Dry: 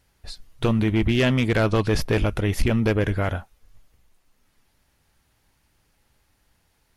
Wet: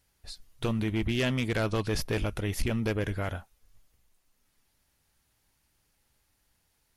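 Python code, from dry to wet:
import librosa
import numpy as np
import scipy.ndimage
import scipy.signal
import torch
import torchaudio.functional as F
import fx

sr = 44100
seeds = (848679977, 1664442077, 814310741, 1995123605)

y = fx.high_shelf(x, sr, hz=4100.0, db=7.5)
y = F.gain(torch.from_numpy(y), -8.5).numpy()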